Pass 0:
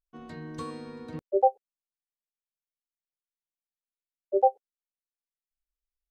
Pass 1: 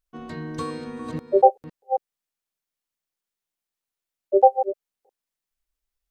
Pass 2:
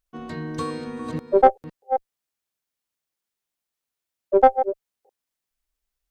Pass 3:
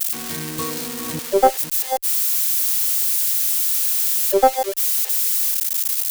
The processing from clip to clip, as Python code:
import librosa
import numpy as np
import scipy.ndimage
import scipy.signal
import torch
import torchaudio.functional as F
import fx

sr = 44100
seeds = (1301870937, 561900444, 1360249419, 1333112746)

y1 = fx.reverse_delay(x, sr, ms=283, wet_db=-9.5)
y1 = y1 * librosa.db_to_amplitude(7.0)
y2 = fx.diode_clip(y1, sr, knee_db=-8.0)
y2 = y2 * librosa.db_to_amplitude(2.0)
y3 = y2 + 0.5 * 10.0 ** (-14.5 / 20.0) * np.diff(np.sign(y2), prepend=np.sign(y2[:1]))